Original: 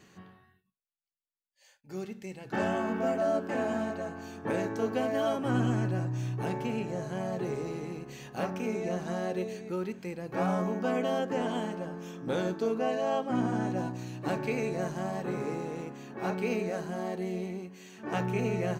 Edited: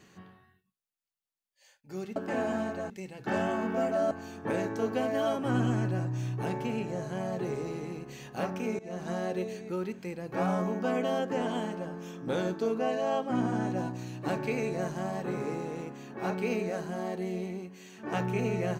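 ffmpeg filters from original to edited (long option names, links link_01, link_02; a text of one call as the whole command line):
ffmpeg -i in.wav -filter_complex "[0:a]asplit=5[link_01][link_02][link_03][link_04][link_05];[link_01]atrim=end=2.162[link_06];[link_02]atrim=start=3.368:end=4.112[link_07];[link_03]atrim=start=2.158:end=3.372[link_08];[link_04]atrim=start=4.108:end=8.79,asetpts=PTS-STARTPTS,afade=type=out:start_time=4.678:duration=0.004:curve=hsin:silence=0.1[link_09];[link_05]atrim=start=8.79,asetpts=PTS-STARTPTS,afade=type=in:duration=0.3:silence=0.1[link_10];[link_06][link_07]acrossfade=duration=0.004:curve1=hsin:curve2=hsin[link_11];[link_11][link_08]acrossfade=duration=0.004:curve1=hsin:curve2=hsin[link_12];[link_09][link_10]concat=n=2:v=0:a=1[link_13];[link_12][link_13]acrossfade=duration=0.004:curve1=hsin:curve2=hsin" out.wav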